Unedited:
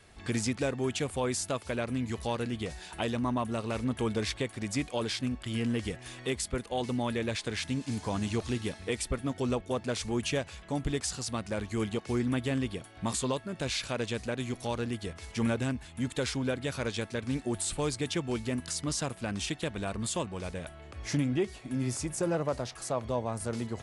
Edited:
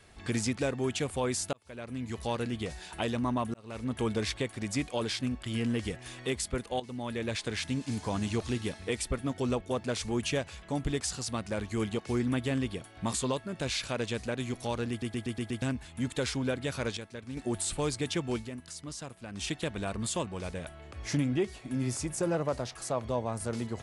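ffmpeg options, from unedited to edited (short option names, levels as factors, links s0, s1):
-filter_complex "[0:a]asplit=14[s0][s1][s2][s3][s4][s5][s6][s7][s8][s9][s10][s11][s12][s13];[s0]atrim=end=1.53,asetpts=PTS-STARTPTS,afade=t=out:st=1.526:d=0.004:c=hsin[s14];[s1]atrim=start=1.53:end=3.54,asetpts=PTS-STARTPTS,afade=t=in:d=0.79,afade=t=out:st=2.006:d=0.004:c=hsin[s15];[s2]atrim=start=3.54:end=6.8,asetpts=PTS-STARTPTS,afade=t=in:d=0.46,afade=t=out:st=3.256:d=0.004:c=hsin:silence=0.211349[s16];[s3]atrim=start=6.8:end=15.022,asetpts=PTS-STARTPTS,afade=t=in:d=0.57:silence=0.211349[s17];[s4]atrim=start=14.898:end=15.022[s18];[s5]atrim=start=14.898:end=15.022[s19];[s6]atrim=start=14.898:end=15.022[s20];[s7]atrim=start=14.898:end=15.022[s21];[s8]atrim=start=14.898:end=15.022[s22];[s9]atrim=start=15.618:end=16.972[s23];[s10]atrim=start=16.968:end=17.372,asetpts=PTS-STARTPTS,volume=0.376[s24];[s11]atrim=start=17.368:end=18.5,asetpts=PTS-STARTPTS,afade=t=out:st=0.982:d=0.15:silence=0.354813[s25];[s12]atrim=start=18.5:end=19.32,asetpts=PTS-STARTPTS,volume=0.355[s26];[s13]atrim=start=19.32,asetpts=PTS-STARTPTS,afade=t=in:d=0.15:silence=0.354813[s27];[s14][s15][s16][s17]concat=n=4:v=0:a=1[s28];[s28][s18]acrossfade=d=0.004:c1=hsin:c2=hsin[s29];[s29][s19]acrossfade=d=0.004:c1=hsin:c2=hsin[s30];[s30][s20]acrossfade=d=0.004:c1=hsin:c2=hsin[s31];[s31][s21]acrossfade=d=0.004:c1=hsin:c2=hsin[s32];[s32][s22]acrossfade=d=0.004:c1=hsin:c2=hsin[s33];[s33][s23]acrossfade=d=0.004:c1=hsin:c2=hsin[s34];[s34][s24]acrossfade=d=0.004:c1=hsin:c2=hsin[s35];[s25][s26][s27]concat=n=3:v=0:a=1[s36];[s35][s36]acrossfade=d=0.004:c1=hsin:c2=hsin"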